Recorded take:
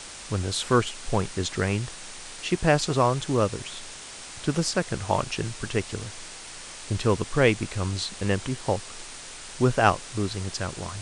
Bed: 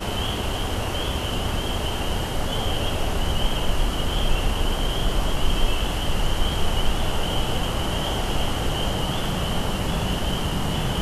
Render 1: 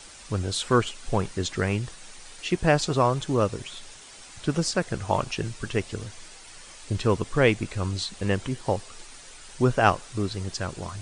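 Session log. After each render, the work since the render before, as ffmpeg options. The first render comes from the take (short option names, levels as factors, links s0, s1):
-af "afftdn=nr=8:nf=-41"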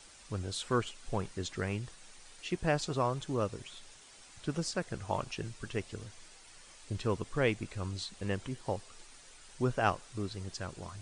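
-af "volume=0.335"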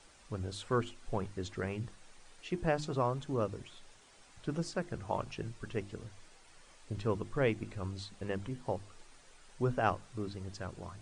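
-af "highshelf=f=2300:g=-8.5,bandreject=f=50:t=h:w=6,bandreject=f=100:t=h:w=6,bandreject=f=150:t=h:w=6,bandreject=f=200:t=h:w=6,bandreject=f=250:t=h:w=6,bandreject=f=300:t=h:w=6,bandreject=f=350:t=h:w=6"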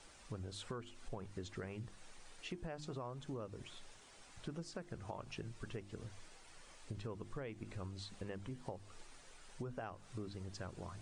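-af "alimiter=level_in=1.19:limit=0.0631:level=0:latency=1:release=229,volume=0.841,acompressor=threshold=0.00708:ratio=4"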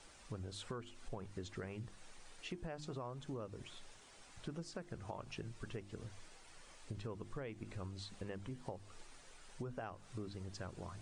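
-af anull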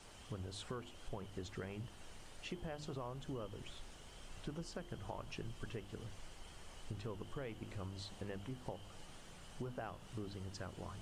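-filter_complex "[1:a]volume=0.02[s0];[0:a][s0]amix=inputs=2:normalize=0"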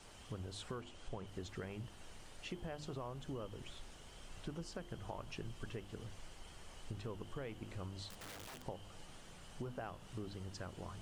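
-filter_complex "[0:a]asettb=1/sr,asplit=3[s0][s1][s2];[s0]atrim=end=0.814[s3];[s1]atrim=start=0.81:end=1.27,asetpts=PTS-STARTPTS,afade=t=in:d=0.004:c=qsin,afade=t=out:st=0.456:d=0.004:c=qsin,lowpass=f=9400:w=0.5412,lowpass=f=9400:w=1.3066[s4];[s2]atrim=start=1.266[s5];[s3][s4]acrossfade=d=0.004:c1=hsin:c2=qsin[s6];[s6][s5]acrossfade=d=0.004:c1=qsin:c2=hsin,asettb=1/sr,asplit=3[s7][s8][s9];[s7]atrim=end=8.094[s10];[s8]atrim=start=8.09:end=8.64,asetpts=PTS-STARTPTS,afade=t=in:d=0.004:c=qsin,afade=t=out:st=0.546:d=0.004:c=qsin,aeval=exprs='(mod(188*val(0)+1,2)-1)/188':c=same[s11];[s9]atrim=start=8.636[s12];[s10][s11]acrossfade=d=0.004:c1=hsin:c2=qsin[s13];[s13][s12]acrossfade=d=0.004:c1=qsin:c2=hsin"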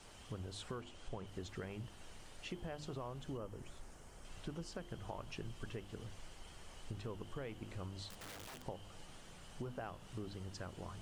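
-filter_complex "[0:a]asettb=1/sr,asplit=3[s0][s1][s2];[s0]atrim=end=3.374[s3];[s1]atrim=start=3.37:end=4.25,asetpts=PTS-STARTPTS,afade=t=in:d=0.004:c=qsin,afade=t=out:st=0.876:d=0.004:c=qsin,equalizer=f=3400:t=o:w=1:g=-10.5[s4];[s2]atrim=start=4.246[s5];[s3][s4]acrossfade=d=0.004:c1=hsin:c2=qsin[s6];[s6][s5]acrossfade=d=0.004:c1=qsin:c2=hsin"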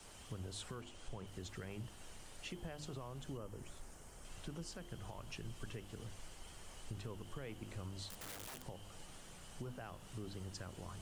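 -filter_complex "[0:a]acrossover=split=180|1600|7100[s0][s1][s2][s3];[s1]alimiter=level_in=7.5:limit=0.0631:level=0:latency=1,volume=0.133[s4];[s3]acontrast=63[s5];[s0][s4][s2][s5]amix=inputs=4:normalize=0"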